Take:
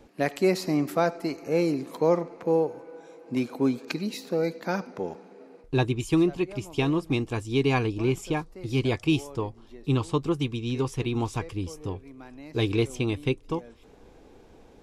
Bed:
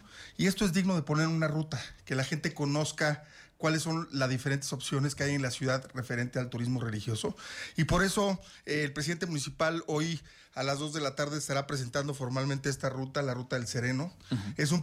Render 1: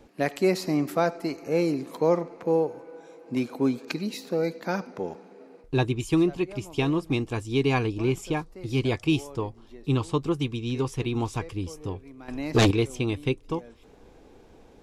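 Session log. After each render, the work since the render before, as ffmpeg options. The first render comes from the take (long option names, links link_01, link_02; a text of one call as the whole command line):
ffmpeg -i in.wav -filter_complex "[0:a]asettb=1/sr,asplit=3[link_01][link_02][link_03];[link_01]atrim=end=12.284[link_04];[link_02]atrim=start=12.28:end=12.71,asetpts=PTS-STARTPTS,afade=type=in:duration=0.004:curve=qsin,afade=type=out:start_time=0.426:duration=0.004:curve=qsin,aeval=exprs='0.2*sin(PI/2*2.51*val(0)/0.2)':channel_layout=same[link_05];[link_03]atrim=start=12.706[link_06];[link_04][link_05]acrossfade=duration=0.004:curve1=hsin:curve2=qsin[link_07];[link_07][link_06]acrossfade=duration=0.004:curve1=qsin:curve2=hsin" out.wav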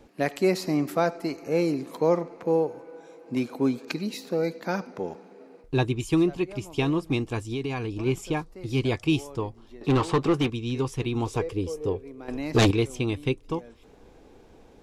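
ffmpeg -i in.wav -filter_complex "[0:a]asplit=3[link_01][link_02][link_03];[link_01]afade=type=out:start_time=7.51:duration=0.02[link_04];[link_02]acompressor=threshold=-26dB:ratio=6:attack=3.2:release=140:knee=1:detection=peak,afade=type=in:start_time=7.51:duration=0.02,afade=type=out:start_time=8.05:duration=0.02[link_05];[link_03]afade=type=in:start_time=8.05:duration=0.02[link_06];[link_04][link_05][link_06]amix=inputs=3:normalize=0,asettb=1/sr,asplit=3[link_07][link_08][link_09];[link_07]atrim=end=9.814[link_10];[link_08]atrim=start=9.81:end=10.5,asetpts=PTS-STARTPTS,afade=type=in:duration=0.004:curve=qsin,afade=type=out:start_time=0.686:duration=0.004:curve=qsin,asplit=2[link_11][link_12];[link_12]highpass=frequency=720:poles=1,volume=24dB,asoftclip=type=tanh:threshold=-13dB[link_13];[link_11][link_13]amix=inputs=2:normalize=0,lowpass=frequency=1400:poles=1,volume=-6dB[link_14];[link_09]atrim=start=10.496[link_15];[link_10][link_14]acrossfade=duration=0.004:curve1=hsin:curve2=qsin[link_16];[link_16][link_15]acrossfade=duration=0.004:curve1=qsin:curve2=hsin,asettb=1/sr,asplit=3[link_17][link_18][link_19];[link_17]atrim=end=11.264[link_20];[link_18]atrim=start=11.26:end=12.37,asetpts=PTS-STARTPTS,afade=type=in:duration=0.004:curve=qsin,afade=type=out:start_time=1.106:duration=0.004:curve=qsin,equalizer=frequency=450:width_type=o:width=0.67:gain=12[link_21];[link_19]atrim=start=12.366[link_22];[link_20][link_21]acrossfade=duration=0.004:curve1=hsin:curve2=qsin[link_23];[link_23][link_22]acrossfade=duration=0.004:curve1=qsin:curve2=hsin" out.wav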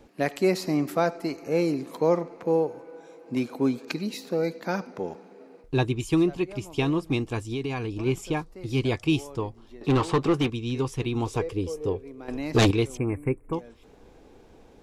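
ffmpeg -i in.wav -filter_complex "[0:a]asettb=1/sr,asplit=3[link_01][link_02][link_03];[link_01]atrim=end=12.974[link_04];[link_02]atrim=start=12.97:end=13.53,asetpts=PTS-STARTPTS,afade=type=in:duration=0.004:curve=qsin,afade=type=out:start_time=0.556:duration=0.004:curve=qsin,asuperstop=centerf=4400:order=12:qfactor=0.78[link_05];[link_03]atrim=start=13.526[link_06];[link_04][link_05]acrossfade=duration=0.004:curve1=hsin:curve2=qsin[link_07];[link_07][link_06]acrossfade=duration=0.004:curve1=qsin:curve2=hsin" out.wav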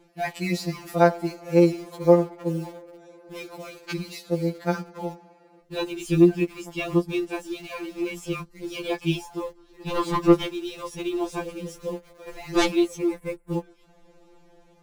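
ffmpeg -i in.wav -filter_complex "[0:a]asplit=2[link_01][link_02];[link_02]acrusher=bits=5:mix=0:aa=0.000001,volume=-10dB[link_03];[link_01][link_03]amix=inputs=2:normalize=0,afftfilt=real='re*2.83*eq(mod(b,8),0)':imag='im*2.83*eq(mod(b,8),0)':win_size=2048:overlap=0.75" out.wav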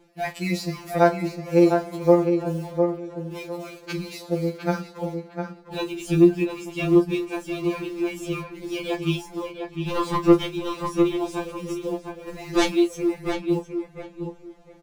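ffmpeg -i in.wav -filter_complex "[0:a]asplit=2[link_01][link_02];[link_02]adelay=32,volume=-11dB[link_03];[link_01][link_03]amix=inputs=2:normalize=0,asplit=2[link_04][link_05];[link_05]adelay=705,lowpass=frequency=2300:poles=1,volume=-5.5dB,asplit=2[link_06][link_07];[link_07]adelay=705,lowpass=frequency=2300:poles=1,volume=0.22,asplit=2[link_08][link_09];[link_09]adelay=705,lowpass=frequency=2300:poles=1,volume=0.22[link_10];[link_04][link_06][link_08][link_10]amix=inputs=4:normalize=0" out.wav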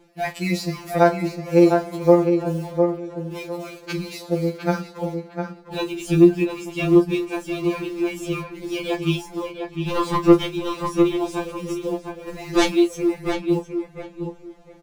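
ffmpeg -i in.wav -af "volume=2.5dB,alimiter=limit=-2dB:level=0:latency=1" out.wav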